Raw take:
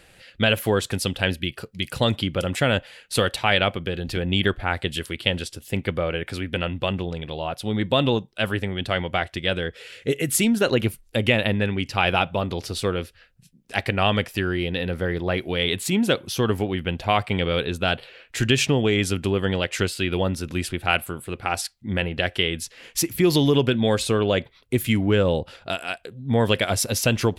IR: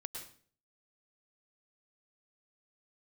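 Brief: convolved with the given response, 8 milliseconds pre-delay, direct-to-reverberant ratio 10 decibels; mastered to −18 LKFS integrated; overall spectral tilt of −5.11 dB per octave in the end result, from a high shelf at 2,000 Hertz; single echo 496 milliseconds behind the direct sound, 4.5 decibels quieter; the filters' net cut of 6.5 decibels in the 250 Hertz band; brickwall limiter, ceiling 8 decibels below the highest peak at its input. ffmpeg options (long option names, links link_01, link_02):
-filter_complex "[0:a]equalizer=frequency=250:width_type=o:gain=-9,highshelf=frequency=2000:gain=-7.5,alimiter=limit=-15.5dB:level=0:latency=1,aecho=1:1:496:0.596,asplit=2[link_01][link_02];[1:a]atrim=start_sample=2205,adelay=8[link_03];[link_02][link_03]afir=irnorm=-1:irlink=0,volume=-8dB[link_04];[link_01][link_04]amix=inputs=2:normalize=0,volume=9.5dB"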